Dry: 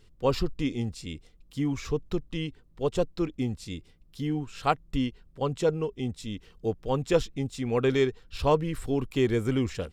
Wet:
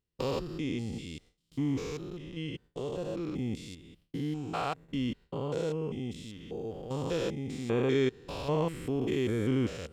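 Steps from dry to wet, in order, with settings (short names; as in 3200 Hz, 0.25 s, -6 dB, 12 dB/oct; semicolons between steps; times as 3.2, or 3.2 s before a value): stepped spectrum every 0.2 s; gate with hold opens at -44 dBFS; HPF 96 Hz 6 dB/oct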